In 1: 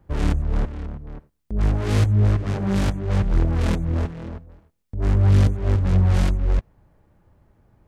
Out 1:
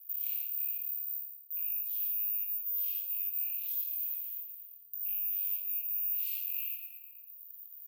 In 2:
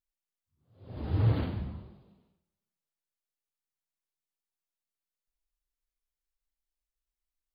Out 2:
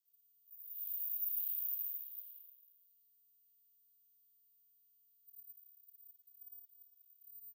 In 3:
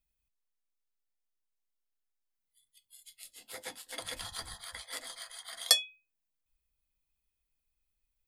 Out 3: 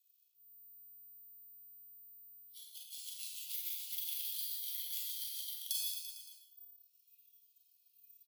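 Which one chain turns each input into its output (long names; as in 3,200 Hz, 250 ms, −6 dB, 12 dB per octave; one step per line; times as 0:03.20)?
loose part that buzzes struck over −16 dBFS, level −19 dBFS
high-shelf EQ 4,200 Hz −11.5 dB
noise reduction from a noise print of the clip's start 16 dB
repeating echo 113 ms, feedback 47%, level −13 dB
four-comb reverb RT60 0.49 s, combs from 30 ms, DRR −1.5 dB
bad sample-rate conversion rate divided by 3×, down none, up zero stuff
flanger 1.3 Hz, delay 2.6 ms, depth 9.2 ms, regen +71%
reversed playback
downward compressor 5 to 1, threshold −35 dBFS
reversed playback
Butterworth high-pass 2,700 Hz 48 dB per octave
multiband upward and downward compressor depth 70%
level +4.5 dB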